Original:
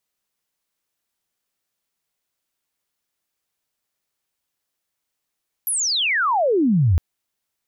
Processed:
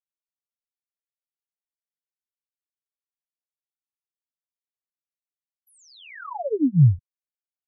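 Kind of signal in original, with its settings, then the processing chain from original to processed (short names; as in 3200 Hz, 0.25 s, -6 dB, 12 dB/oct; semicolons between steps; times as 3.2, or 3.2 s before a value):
chirp logarithmic 12000 Hz -> 76 Hz -19.5 dBFS -> -12.5 dBFS 1.31 s
comb 7.1 ms, depth 89%; spectral expander 2.5:1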